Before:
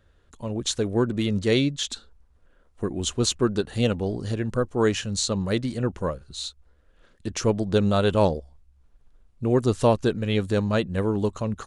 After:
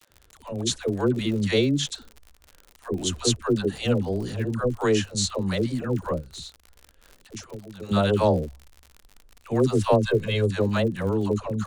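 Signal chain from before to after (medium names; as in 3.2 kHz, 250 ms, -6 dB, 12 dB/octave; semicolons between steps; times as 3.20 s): 6.11–7.82 s: compression 6:1, threshold -37 dBFS, peak gain reduction 19.5 dB; 9.97–10.41 s: comb 1.9 ms; phase dispersion lows, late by 104 ms, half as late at 570 Hz; crackle 65 per s -34 dBFS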